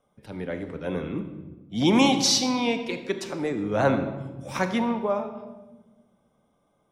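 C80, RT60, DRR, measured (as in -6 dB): 10.5 dB, 1.2 s, 7.5 dB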